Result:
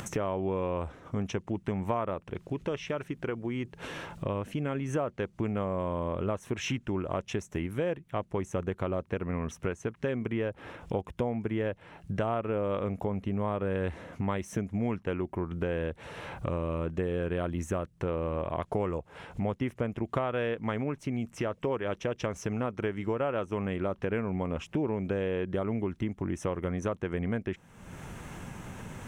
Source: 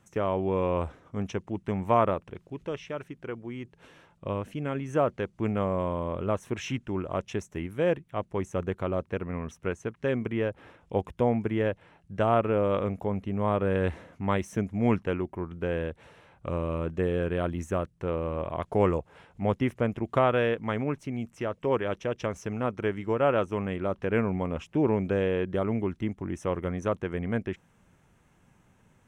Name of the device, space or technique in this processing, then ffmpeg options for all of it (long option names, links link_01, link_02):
upward and downward compression: -af "acompressor=mode=upward:threshold=-28dB:ratio=2.5,acompressor=threshold=-29dB:ratio=6,volume=2dB"